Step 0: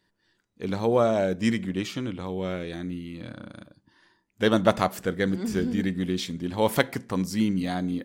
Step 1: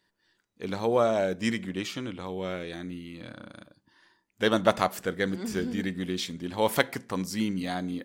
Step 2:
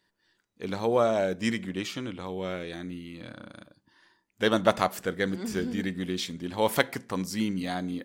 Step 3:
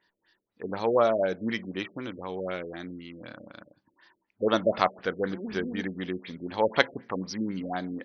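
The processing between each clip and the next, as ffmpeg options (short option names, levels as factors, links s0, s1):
-af "lowshelf=f=330:g=-7"
-af anull
-af "lowshelf=f=250:g=-10,afftfilt=real='re*lt(b*sr/1024,600*pow(6400/600,0.5+0.5*sin(2*PI*4*pts/sr)))':imag='im*lt(b*sr/1024,600*pow(6400/600,0.5+0.5*sin(2*PI*4*pts/sr)))':win_size=1024:overlap=0.75,volume=1.41"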